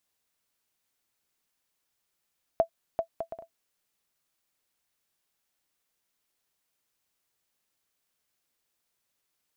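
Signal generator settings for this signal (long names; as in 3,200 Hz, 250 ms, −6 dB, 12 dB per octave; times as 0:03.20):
bouncing ball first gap 0.39 s, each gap 0.55, 664 Hz, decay 92 ms −12.5 dBFS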